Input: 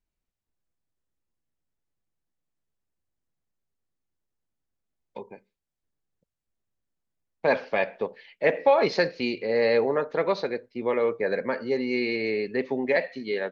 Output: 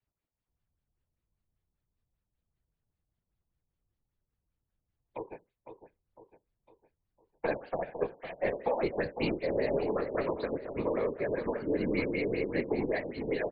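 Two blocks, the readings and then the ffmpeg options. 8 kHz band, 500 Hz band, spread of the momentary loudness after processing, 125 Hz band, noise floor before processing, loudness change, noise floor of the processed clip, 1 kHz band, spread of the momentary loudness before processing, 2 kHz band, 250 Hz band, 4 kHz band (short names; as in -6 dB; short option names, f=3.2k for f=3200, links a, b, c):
n/a, -7.0 dB, 7 LU, +1.0 dB, under -85 dBFS, -7.0 dB, under -85 dBFS, -8.0 dB, 9 LU, -9.5 dB, -3.0 dB, -11.5 dB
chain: -filter_complex "[0:a]acrossover=split=290[a][b];[b]acompressor=threshold=-30dB:ratio=6[c];[a][c]amix=inputs=2:normalize=0,acrossover=split=260[d][e];[d]aeval=exprs='max(val(0),0)':c=same[f];[f][e]amix=inputs=2:normalize=0,afftfilt=real='hypot(re,im)*cos(2*PI*random(0))':imag='hypot(re,im)*sin(2*PI*random(1))':win_size=512:overlap=0.75,aeval=exprs='0.188*(cos(1*acos(clip(val(0)/0.188,-1,1)))-cos(1*PI/2))+0.0015*(cos(3*acos(clip(val(0)/0.188,-1,1)))-cos(3*PI/2))+0.00376*(cos(4*acos(clip(val(0)/0.188,-1,1)))-cos(4*PI/2))':c=same,aecho=1:1:505|1010|1515|2020|2525:0.335|0.154|0.0709|0.0326|0.015,afftfilt=real='re*lt(b*sr/1024,990*pow(5000/990,0.5+0.5*sin(2*PI*5.1*pts/sr)))':imag='im*lt(b*sr/1024,990*pow(5000/990,0.5+0.5*sin(2*PI*5.1*pts/sr)))':win_size=1024:overlap=0.75,volume=6dB"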